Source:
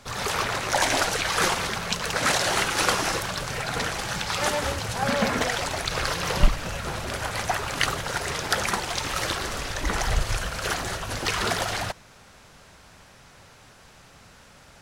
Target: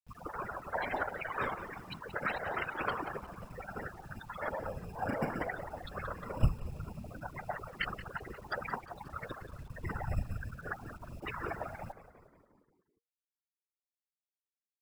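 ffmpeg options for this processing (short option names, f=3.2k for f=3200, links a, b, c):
-filter_complex "[0:a]lowpass=3.7k,afftfilt=real='re*gte(hypot(re,im),0.112)':imag='im*gte(hypot(re,im),0.112)':win_size=1024:overlap=0.75,acrossover=split=240[a][b];[a]acrusher=samples=17:mix=1:aa=0.000001[c];[c][b]amix=inputs=2:normalize=0,afftfilt=real='hypot(re,im)*cos(2*PI*random(0))':imag='hypot(re,im)*sin(2*PI*random(1))':win_size=512:overlap=0.75,acrusher=bits=9:mix=0:aa=0.000001,asplit=7[d][e][f][g][h][i][j];[e]adelay=178,afreqshift=-80,volume=-14.5dB[k];[f]adelay=356,afreqshift=-160,volume=-18.8dB[l];[g]adelay=534,afreqshift=-240,volume=-23.1dB[m];[h]adelay=712,afreqshift=-320,volume=-27.4dB[n];[i]adelay=890,afreqshift=-400,volume=-31.7dB[o];[j]adelay=1068,afreqshift=-480,volume=-36dB[p];[d][k][l][m][n][o][p]amix=inputs=7:normalize=0,volume=-3.5dB"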